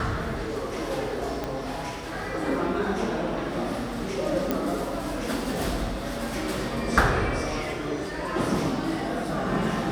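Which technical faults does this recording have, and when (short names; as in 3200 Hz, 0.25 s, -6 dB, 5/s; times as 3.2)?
1.44 pop -16 dBFS
4.51 pop -11 dBFS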